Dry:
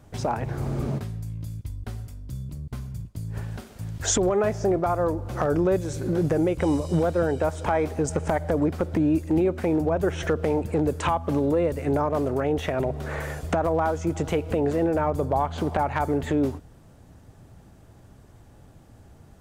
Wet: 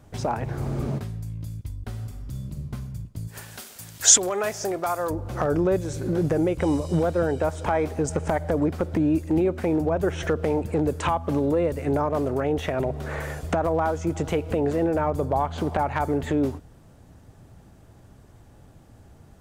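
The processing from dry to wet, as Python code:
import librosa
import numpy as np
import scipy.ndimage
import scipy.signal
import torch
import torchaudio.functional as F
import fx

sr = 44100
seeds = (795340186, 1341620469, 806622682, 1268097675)

y = fx.reverb_throw(x, sr, start_s=1.88, length_s=0.7, rt60_s=1.5, drr_db=2.5)
y = fx.tilt_eq(y, sr, slope=4.0, at=(3.27, 5.09), fade=0.02)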